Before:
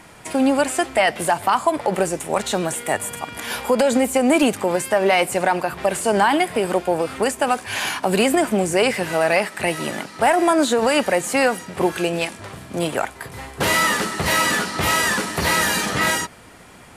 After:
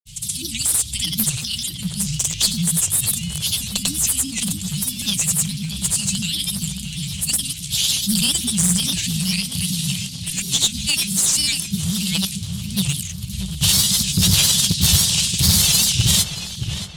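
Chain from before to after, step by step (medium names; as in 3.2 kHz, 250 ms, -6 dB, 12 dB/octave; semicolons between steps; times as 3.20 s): Chebyshev band-stop 160–3300 Hz, order 4; in parallel at -3 dB: short-mantissa float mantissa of 2-bit; on the sum: one-sided clip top -20 dBFS; granulator, grains 20 per s, pitch spread up and down by 3 st; on a send: filtered feedback delay 629 ms, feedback 49%, low-pass 2.9 kHz, level -7.5 dB; on the sum: warped record 78 rpm, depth 160 cents; trim +8.5 dB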